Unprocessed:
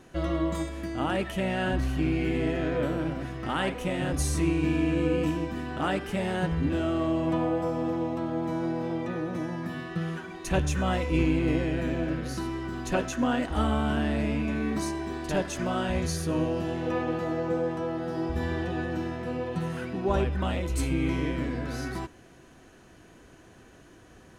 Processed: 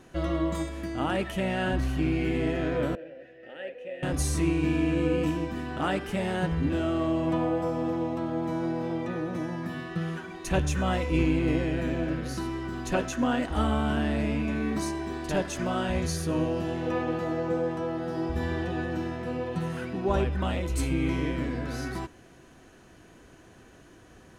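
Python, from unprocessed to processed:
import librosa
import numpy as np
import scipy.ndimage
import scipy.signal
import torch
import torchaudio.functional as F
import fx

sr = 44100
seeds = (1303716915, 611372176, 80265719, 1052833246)

y = fx.vowel_filter(x, sr, vowel='e', at=(2.95, 4.03))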